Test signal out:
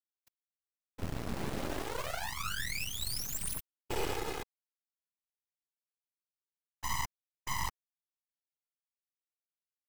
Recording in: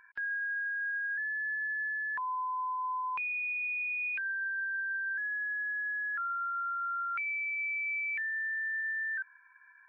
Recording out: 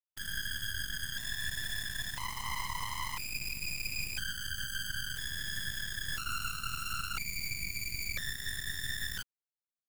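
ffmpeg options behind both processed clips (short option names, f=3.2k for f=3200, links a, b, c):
-af "acrusher=bits=3:dc=4:mix=0:aa=0.000001,afftfilt=real='hypot(re,im)*cos(2*PI*random(0))':imag='hypot(re,im)*sin(2*PI*random(1))':win_size=512:overlap=0.75,aeval=exprs='0.0501*(cos(1*acos(clip(val(0)/0.0501,-1,1)))-cos(1*PI/2))+0.0178*(cos(6*acos(clip(val(0)/0.0501,-1,1)))-cos(6*PI/2))':c=same"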